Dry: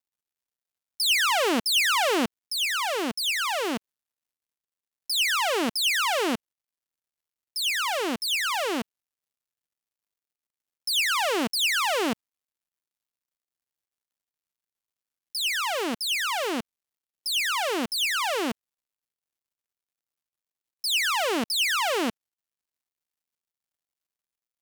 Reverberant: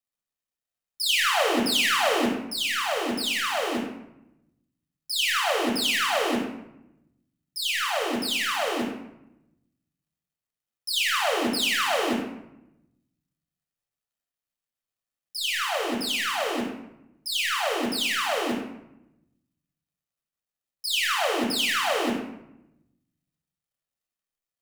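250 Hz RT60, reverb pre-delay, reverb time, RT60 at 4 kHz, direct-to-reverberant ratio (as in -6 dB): 1.2 s, 7 ms, 0.80 s, 0.55 s, -0.5 dB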